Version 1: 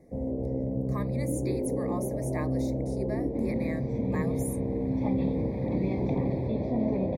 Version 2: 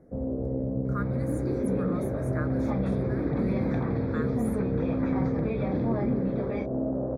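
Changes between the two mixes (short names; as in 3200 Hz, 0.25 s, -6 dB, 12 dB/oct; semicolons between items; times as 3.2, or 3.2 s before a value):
speech -11.5 dB; second sound: entry -2.35 s; master: remove Chebyshev band-stop 940–2100 Hz, order 2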